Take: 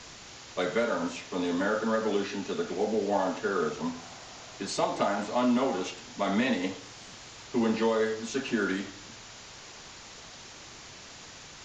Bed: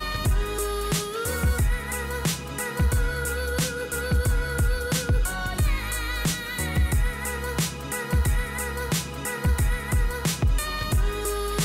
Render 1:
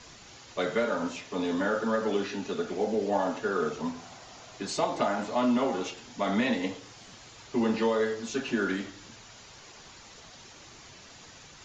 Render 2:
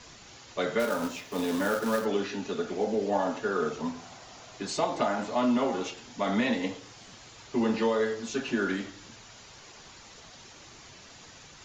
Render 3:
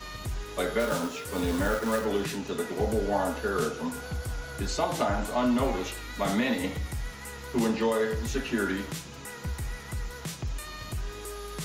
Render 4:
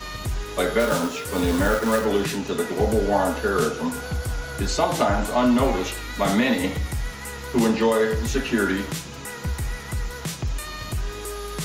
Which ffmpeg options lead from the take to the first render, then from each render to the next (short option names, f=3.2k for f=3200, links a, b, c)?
-af "afftdn=nr=6:nf=-48"
-filter_complex "[0:a]asplit=3[a][b][c];[a]afade=t=out:st=0.79:d=0.02[d];[b]acrusher=bits=3:mode=log:mix=0:aa=0.000001,afade=t=in:st=0.79:d=0.02,afade=t=out:st=2.04:d=0.02[e];[c]afade=t=in:st=2.04:d=0.02[f];[d][e][f]amix=inputs=3:normalize=0"
-filter_complex "[1:a]volume=-11.5dB[a];[0:a][a]amix=inputs=2:normalize=0"
-af "volume=6.5dB"